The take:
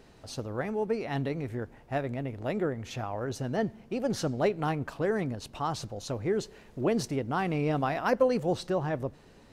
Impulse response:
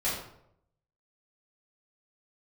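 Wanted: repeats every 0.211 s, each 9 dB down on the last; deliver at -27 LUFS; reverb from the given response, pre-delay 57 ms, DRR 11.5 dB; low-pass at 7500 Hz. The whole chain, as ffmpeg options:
-filter_complex "[0:a]lowpass=7.5k,aecho=1:1:211|422|633|844:0.355|0.124|0.0435|0.0152,asplit=2[a][b];[1:a]atrim=start_sample=2205,adelay=57[c];[b][c]afir=irnorm=-1:irlink=0,volume=-20dB[d];[a][d]amix=inputs=2:normalize=0,volume=3.5dB"

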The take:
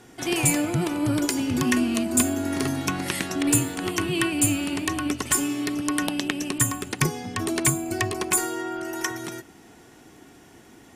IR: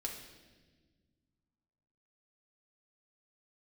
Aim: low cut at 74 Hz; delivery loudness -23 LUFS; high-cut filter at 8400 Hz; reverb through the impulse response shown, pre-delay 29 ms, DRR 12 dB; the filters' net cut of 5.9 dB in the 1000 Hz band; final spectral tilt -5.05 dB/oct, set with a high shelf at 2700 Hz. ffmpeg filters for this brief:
-filter_complex "[0:a]highpass=74,lowpass=8.4k,equalizer=f=1k:t=o:g=-6.5,highshelf=f=2.7k:g=-8,asplit=2[a][b];[1:a]atrim=start_sample=2205,adelay=29[c];[b][c]afir=irnorm=-1:irlink=0,volume=-11.5dB[d];[a][d]amix=inputs=2:normalize=0,volume=4.5dB"

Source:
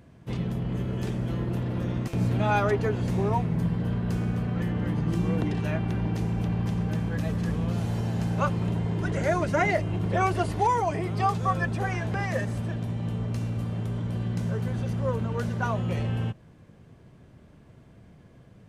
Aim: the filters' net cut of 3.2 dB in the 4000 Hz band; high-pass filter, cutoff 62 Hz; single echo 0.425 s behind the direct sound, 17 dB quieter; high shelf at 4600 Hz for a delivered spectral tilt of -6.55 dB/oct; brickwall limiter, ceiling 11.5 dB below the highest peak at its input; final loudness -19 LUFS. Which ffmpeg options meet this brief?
-af "highpass=62,equalizer=f=4k:t=o:g=-6.5,highshelf=f=4.6k:g=4,alimiter=limit=-23.5dB:level=0:latency=1,aecho=1:1:425:0.141,volume=12.5dB"

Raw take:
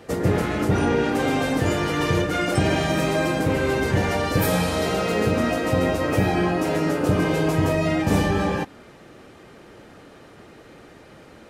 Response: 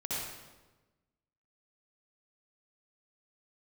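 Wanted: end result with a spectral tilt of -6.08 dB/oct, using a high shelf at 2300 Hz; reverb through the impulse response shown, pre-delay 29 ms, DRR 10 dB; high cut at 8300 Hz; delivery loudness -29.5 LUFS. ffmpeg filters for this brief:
-filter_complex "[0:a]lowpass=8.3k,highshelf=f=2.3k:g=-5.5,asplit=2[a][b];[1:a]atrim=start_sample=2205,adelay=29[c];[b][c]afir=irnorm=-1:irlink=0,volume=-14dB[d];[a][d]amix=inputs=2:normalize=0,volume=-7.5dB"

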